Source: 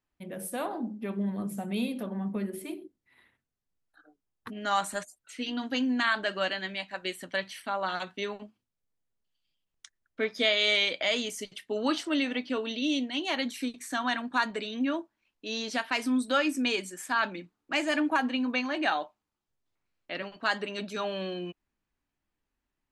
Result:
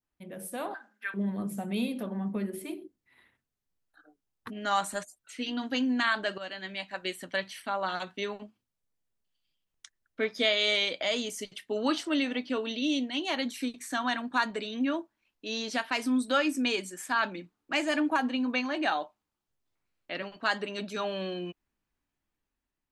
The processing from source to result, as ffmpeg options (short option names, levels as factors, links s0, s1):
-filter_complex "[0:a]asettb=1/sr,asplit=3[s0][s1][s2];[s0]atrim=end=0.744[s3];[s1]atrim=start=0.74:end=1.14,asetpts=PTS-STARTPTS,afade=t=in:d=0.004:c=qsin,afade=t=out:st=0.396:d=0.004:c=qsin,highpass=f=1600:t=q:w=12[s4];[s2]atrim=start=1.136[s5];[s3][s4]acrossfade=d=0.004:c1=hsin:c2=qsin[s6];[s6][s5]acrossfade=d=0.004:c1=qsin:c2=hsin,asplit=2[s7][s8];[s7]atrim=end=6.38,asetpts=PTS-STARTPTS,afade=t=out:st=6.376:d=0.004:c=hsin:silence=0.223872[s9];[s8]atrim=start=6.38,asetpts=PTS-STARTPTS,afade=t=in:d=0.49:silence=0.223872[s10];[s9][s10]concat=n=2:v=0:a=1,dynaudnorm=f=310:g=5:m=1.5,adynamicequalizer=threshold=0.0158:dfrequency=2100:dqfactor=1.1:tfrequency=2100:tqfactor=1.1:attack=5:release=100:ratio=0.375:range=2.5:mode=cutabove:tftype=bell,volume=0.668"